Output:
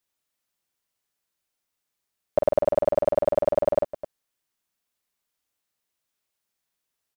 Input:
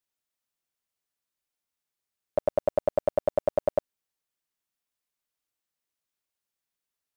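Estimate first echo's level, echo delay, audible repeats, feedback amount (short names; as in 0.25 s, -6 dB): -5.5 dB, 47 ms, 2, no steady repeat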